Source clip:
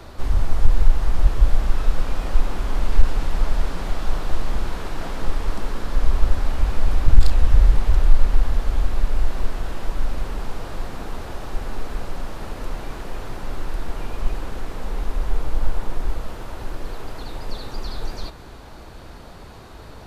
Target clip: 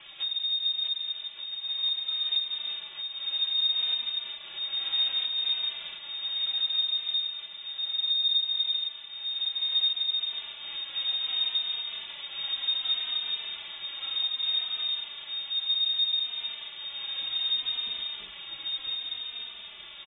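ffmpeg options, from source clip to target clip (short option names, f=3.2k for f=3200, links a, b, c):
-filter_complex "[0:a]asplit=2[a][b];[b]aecho=0:1:477:0.0891[c];[a][c]amix=inputs=2:normalize=0,lowpass=f=3.1k:t=q:w=0.5098,lowpass=f=3.1k:t=q:w=0.6013,lowpass=f=3.1k:t=q:w=0.9,lowpass=f=3.1k:t=q:w=2.563,afreqshift=-3700,acompressor=threshold=-24dB:ratio=6,highshelf=f=2.3k:g=-11,asplit=2[d][e];[e]aecho=0:1:650|1170|1586|1919|2185:0.631|0.398|0.251|0.158|0.1[f];[d][f]amix=inputs=2:normalize=0,asplit=2[g][h];[h]adelay=3.1,afreqshift=-0.65[i];[g][i]amix=inputs=2:normalize=1,volume=4dB"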